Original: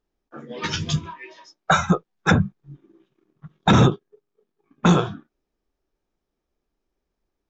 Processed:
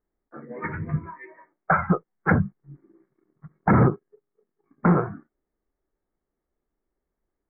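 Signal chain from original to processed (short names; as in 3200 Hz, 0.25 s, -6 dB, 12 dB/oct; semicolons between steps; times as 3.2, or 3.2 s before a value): Chebyshev low-pass 2200 Hz, order 8; gain -2 dB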